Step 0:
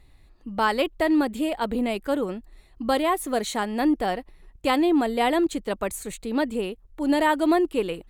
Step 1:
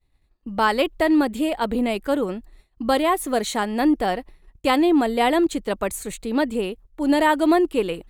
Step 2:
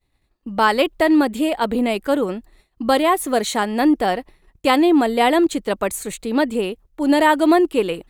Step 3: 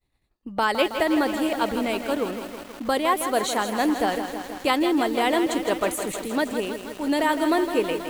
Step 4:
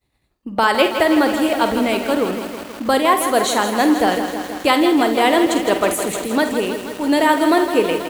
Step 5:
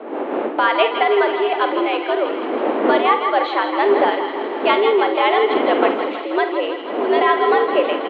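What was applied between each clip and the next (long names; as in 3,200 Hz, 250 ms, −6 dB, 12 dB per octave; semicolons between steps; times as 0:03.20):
downward expander −42 dBFS; level +3 dB
low-shelf EQ 82 Hz −9 dB; level +3.5 dB
harmonic and percussive parts rebalanced harmonic −5 dB; feedback echo at a low word length 161 ms, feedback 80%, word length 6 bits, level −8.5 dB; level −3 dB
high-pass filter 45 Hz; on a send: ambience of single reflections 49 ms −10.5 dB, 76 ms −15 dB; on the sum: level +6.5 dB
wind on the microphone 460 Hz −23 dBFS; single-tap delay 162 ms −12.5 dB; single-sideband voice off tune +100 Hz 160–3,300 Hz; level −1 dB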